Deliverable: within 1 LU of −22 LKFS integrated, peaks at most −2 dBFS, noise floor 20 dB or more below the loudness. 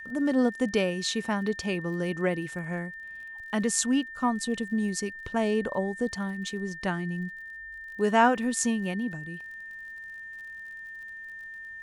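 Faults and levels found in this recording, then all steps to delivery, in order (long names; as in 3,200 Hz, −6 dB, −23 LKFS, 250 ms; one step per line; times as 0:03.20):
crackle rate 44 per second; interfering tone 1,800 Hz; level of the tone −39 dBFS; integrated loudness −28.5 LKFS; sample peak −9.0 dBFS; target loudness −22.0 LKFS
→ click removal
notch filter 1,800 Hz, Q 30
level +6.5 dB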